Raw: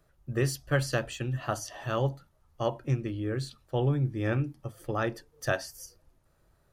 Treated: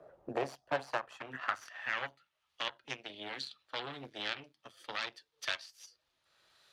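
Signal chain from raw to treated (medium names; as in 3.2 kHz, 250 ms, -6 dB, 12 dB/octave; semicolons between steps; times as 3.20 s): Chebyshev shaper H 3 -12 dB, 8 -22 dB, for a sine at -13 dBFS; band-pass sweep 580 Hz -> 3.7 kHz, 0.29–2.74 s; three bands compressed up and down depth 70%; trim +11 dB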